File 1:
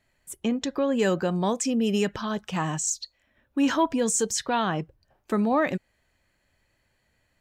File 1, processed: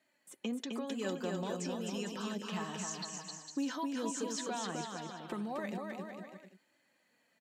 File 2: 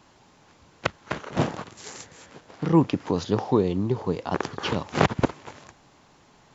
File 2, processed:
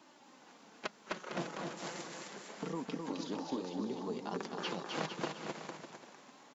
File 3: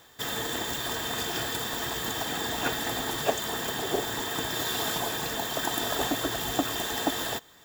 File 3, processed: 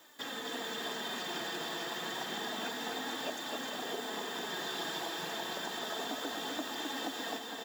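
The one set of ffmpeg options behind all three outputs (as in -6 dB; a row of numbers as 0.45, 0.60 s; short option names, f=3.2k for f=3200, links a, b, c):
-filter_complex "[0:a]acrossover=split=5100[a][b];[b]acompressor=threshold=-50dB:ratio=4:attack=1:release=60[c];[a][c]amix=inputs=2:normalize=0,highpass=f=180:w=0.5412,highpass=f=180:w=1.3066,acrossover=split=4700[d][e];[d]acompressor=threshold=-35dB:ratio=4[f];[f][e]amix=inputs=2:normalize=0,flanger=delay=3.2:depth=3.1:regen=37:speed=0.3:shape=triangular,aecho=1:1:260|455|601.2|710.9|793.2:0.631|0.398|0.251|0.158|0.1"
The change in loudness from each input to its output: -13.0, -15.0, -8.5 LU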